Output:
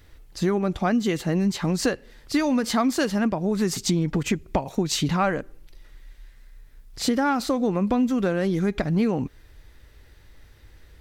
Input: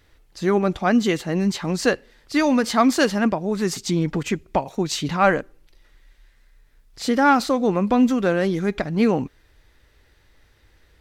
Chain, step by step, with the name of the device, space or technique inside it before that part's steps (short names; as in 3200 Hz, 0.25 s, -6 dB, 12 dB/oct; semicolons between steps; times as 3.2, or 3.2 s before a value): ASMR close-microphone chain (low shelf 240 Hz +6.5 dB; compressor 5:1, threshold -21 dBFS, peak gain reduction 10.5 dB; high shelf 9600 Hz +6 dB); gain +1.5 dB